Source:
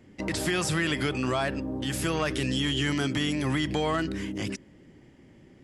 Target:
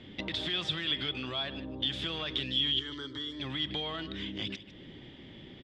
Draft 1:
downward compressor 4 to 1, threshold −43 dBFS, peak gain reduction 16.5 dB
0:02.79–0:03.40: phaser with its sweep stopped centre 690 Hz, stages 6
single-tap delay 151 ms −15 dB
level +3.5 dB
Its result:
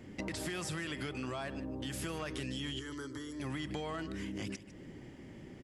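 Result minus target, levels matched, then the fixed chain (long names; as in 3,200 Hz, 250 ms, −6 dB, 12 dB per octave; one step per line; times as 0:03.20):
4,000 Hz band −8.0 dB
downward compressor 4 to 1, threshold −43 dBFS, peak gain reduction 16.5 dB
low-pass with resonance 3,500 Hz, resonance Q 12
0:02.79–0:03.40: phaser with its sweep stopped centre 690 Hz, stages 6
single-tap delay 151 ms −15 dB
level +3.5 dB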